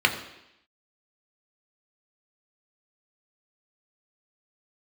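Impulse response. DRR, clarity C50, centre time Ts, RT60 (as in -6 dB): 3.0 dB, 10.0 dB, 17 ms, 0.85 s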